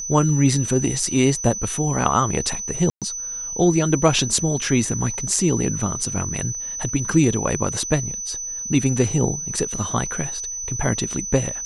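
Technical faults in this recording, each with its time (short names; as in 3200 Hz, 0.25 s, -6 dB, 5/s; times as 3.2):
tone 6000 Hz -27 dBFS
2.9–3.02 gap 0.117 s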